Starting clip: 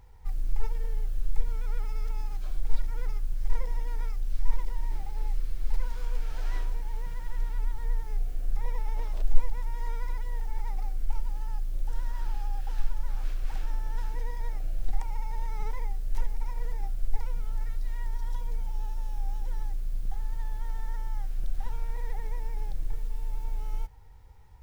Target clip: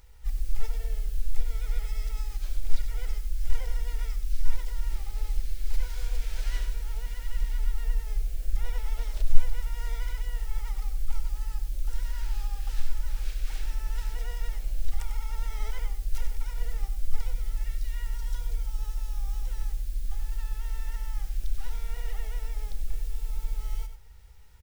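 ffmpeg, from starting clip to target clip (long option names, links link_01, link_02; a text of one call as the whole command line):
ffmpeg -i in.wav -filter_complex "[0:a]highshelf=frequency=2000:gain=7.5,bandreject=frequency=740:width=12,asplit=2[link_01][link_02];[link_02]asetrate=66075,aresample=44100,atempo=0.66742,volume=-6dB[link_03];[link_01][link_03]amix=inputs=2:normalize=0,equalizer=frequency=125:width_type=o:width=1:gain=-9,equalizer=frequency=250:width_type=o:width=1:gain=-6,equalizer=frequency=1000:width_type=o:width=1:gain=-8,asplit=2[link_04][link_05];[link_05]aecho=0:1:96:0.316[link_06];[link_04][link_06]amix=inputs=2:normalize=0" out.wav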